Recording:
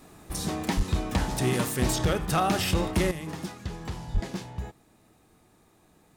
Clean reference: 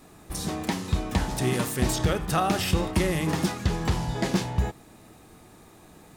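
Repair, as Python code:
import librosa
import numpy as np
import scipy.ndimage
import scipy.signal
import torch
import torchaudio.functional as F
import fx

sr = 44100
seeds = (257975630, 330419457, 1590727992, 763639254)

y = fx.fix_declip(x, sr, threshold_db=-18.0)
y = fx.highpass(y, sr, hz=140.0, slope=24, at=(0.76, 0.88), fade=0.02)
y = fx.highpass(y, sr, hz=140.0, slope=24, at=(4.13, 4.25), fade=0.02)
y = fx.gain(y, sr, db=fx.steps((0.0, 0.0), (3.11, 10.0)))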